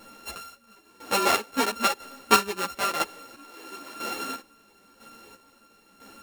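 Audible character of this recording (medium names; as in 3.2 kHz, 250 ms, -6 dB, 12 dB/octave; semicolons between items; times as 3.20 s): a buzz of ramps at a fixed pitch in blocks of 32 samples; chopped level 1 Hz, depth 65%, duty 35%; a shimmering, thickened sound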